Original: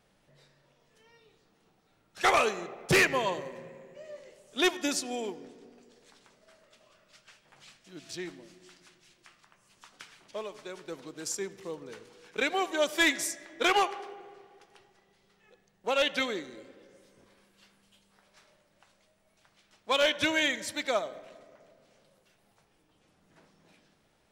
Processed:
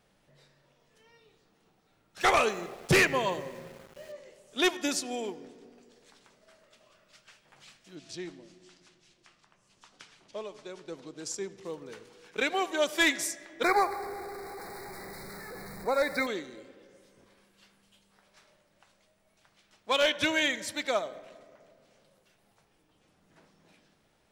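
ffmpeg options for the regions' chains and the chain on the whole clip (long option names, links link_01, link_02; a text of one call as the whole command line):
ffmpeg -i in.wav -filter_complex "[0:a]asettb=1/sr,asplit=3[link_01][link_02][link_03];[link_01]atrim=end=2.204[link_04];[link_02]atrim=start=2.2:end=4.12,asetpts=PTS-STARTPTS,afade=type=in:duration=0.004:curve=qsin,afade=type=out:start_time=1.916:duration=0.004:curve=qsin,aeval=exprs='val(0)*gte(abs(val(0)),0.00376)':channel_layout=same,lowshelf=frequency=160:gain=5.5[link_05];[link_03]atrim=start=4.116[link_06];[link_04][link_05]acrossfade=duration=0.004:curve1=hsin:curve2=qsin[link_07];[link_07][link_06]acrossfade=duration=0.004:curve1=qsin:curve2=hsin,asettb=1/sr,asplit=3[link_08][link_09][link_10];[link_08]atrim=end=7.954[link_11];[link_09]atrim=start=7.95:end=11.65,asetpts=PTS-STARTPTS,afade=type=in:duration=0.004:curve=qsin,afade=type=out:start_time=3.696:duration=0.004:curve=qsin,lowpass=7700,equalizer=frequency=1700:width=0.71:gain=-4.5[link_12];[link_10]atrim=start=11.646[link_13];[link_11][link_12]acrossfade=duration=0.004:curve1=hsin:curve2=qsin[link_14];[link_14][link_13]acrossfade=duration=0.004:curve1=qsin:curve2=hsin,asettb=1/sr,asplit=3[link_15][link_16][link_17];[link_15]atrim=end=13.634[link_18];[link_16]atrim=start=13.63:end=16.27,asetpts=PTS-STARTPTS,afade=type=in:duration=0.004:curve=qsin,afade=type=out:start_time=2.636:duration=0.004:curve=qsin,aeval=exprs='val(0)+0.5*0.0141*sgn(val(0))':channel_layout=same,asuperstop=centerf=3000:order=12:qfactor=2,equalizer=frequency=6300:width_type=o:width=0.43:gain=-10.5[link_19];[link_17]atrim=start=16.266[link_20];[link_18][link_19]acrossfade=duration=0.004:curve1=hsin:curve2=qsin[link_21];[link_21][link_20]acrossfade=duration=0.004:curve1=qsin:curve2=hsin" out.wav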